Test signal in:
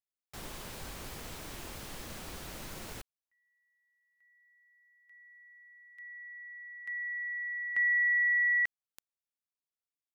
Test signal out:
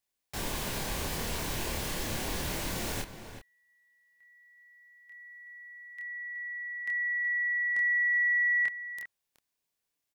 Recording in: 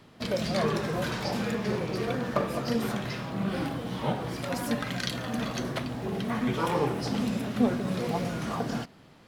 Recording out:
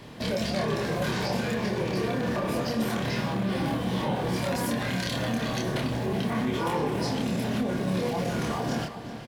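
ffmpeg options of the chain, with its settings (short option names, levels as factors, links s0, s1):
-filter_complex "[0:a]acompressor=threshold=0.02:ratio=5:attack=0.22:release=40:knee=6:detection=rms,bandreject=f=1300:w=8.3,asplit=2[s0][s1];[s1]adelay=27,volume=0.75[s2];[s0][s2]amix=inputs=2:normalize=0,asplit=2[s3][s4];[s4]adelay=373.2,volume=0.316,highshelf=f=4000:g=-8.4[s5];[s3][s5]amix=inputs=2:normalize=0,volume=2.66"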